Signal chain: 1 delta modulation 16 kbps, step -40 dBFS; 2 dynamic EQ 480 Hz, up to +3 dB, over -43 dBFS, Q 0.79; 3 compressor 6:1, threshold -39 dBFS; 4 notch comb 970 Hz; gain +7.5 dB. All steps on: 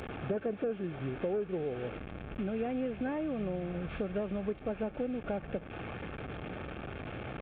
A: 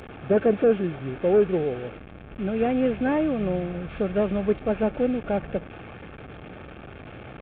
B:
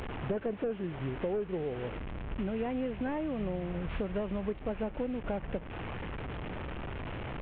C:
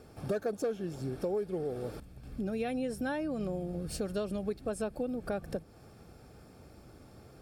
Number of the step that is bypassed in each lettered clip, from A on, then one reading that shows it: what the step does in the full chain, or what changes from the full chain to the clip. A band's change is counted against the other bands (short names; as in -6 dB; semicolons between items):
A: 3, momentary loudness spread change +13 LU; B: 4, momentary loudness spread change -1 LU; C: 1, momentary loudness spread change +13 LU